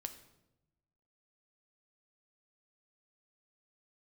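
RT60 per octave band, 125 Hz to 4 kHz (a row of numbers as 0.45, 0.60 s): 1.4, 1.3, 1.0, 0.80, 0.70, 0.65 s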